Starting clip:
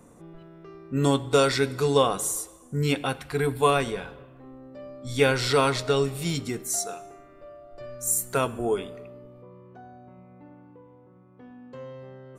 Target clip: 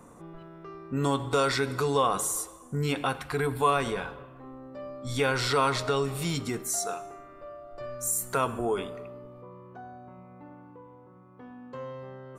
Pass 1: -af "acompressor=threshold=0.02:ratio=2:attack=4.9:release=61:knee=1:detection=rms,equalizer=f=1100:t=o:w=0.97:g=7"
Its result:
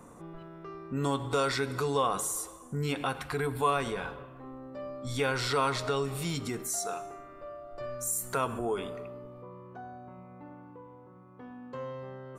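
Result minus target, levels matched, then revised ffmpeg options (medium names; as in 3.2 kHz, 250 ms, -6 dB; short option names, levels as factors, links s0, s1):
compression: peak gain reduction +3 dB
-af "acompressor=threshold=0.0422:ratio=2:attack=4.9:release=61:knee=1:detection=rms,equalizer=f=1100:t=o:w=0.97:g=7"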